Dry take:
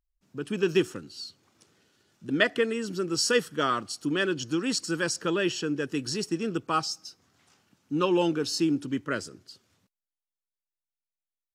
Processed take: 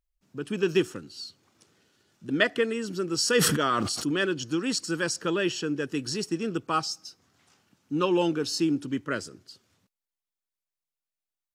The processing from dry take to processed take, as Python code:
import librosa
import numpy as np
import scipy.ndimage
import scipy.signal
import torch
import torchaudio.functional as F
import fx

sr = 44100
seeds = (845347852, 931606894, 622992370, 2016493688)

y = fx.sustainer(x, sr, db_per_s=29.0, at=(3.24, 4.25))